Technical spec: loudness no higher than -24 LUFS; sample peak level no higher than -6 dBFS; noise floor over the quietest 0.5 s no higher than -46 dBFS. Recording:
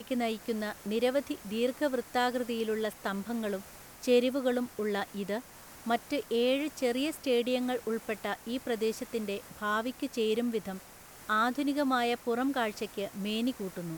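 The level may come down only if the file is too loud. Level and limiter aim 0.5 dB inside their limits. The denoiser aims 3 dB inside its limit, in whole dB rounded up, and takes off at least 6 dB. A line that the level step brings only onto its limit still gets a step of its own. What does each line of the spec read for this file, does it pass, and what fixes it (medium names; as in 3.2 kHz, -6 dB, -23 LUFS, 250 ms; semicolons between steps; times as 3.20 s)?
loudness -32.0 LUFS: pass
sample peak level -14.5 dBFS: pass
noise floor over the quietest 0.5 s -51 dBFS: pass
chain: none needed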